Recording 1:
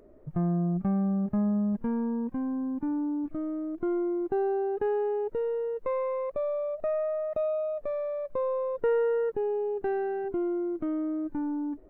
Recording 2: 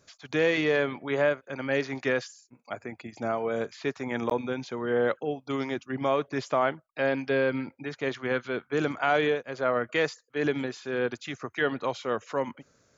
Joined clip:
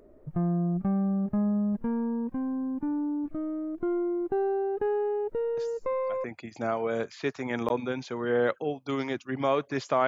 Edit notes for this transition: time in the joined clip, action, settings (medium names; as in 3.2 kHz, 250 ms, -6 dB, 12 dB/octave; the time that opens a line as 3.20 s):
recording 1
5.57 s: add recording 2 from 2.18 s 0.67 s -9.5 dB
6.24 s: go over to recording 2 from 2.85 s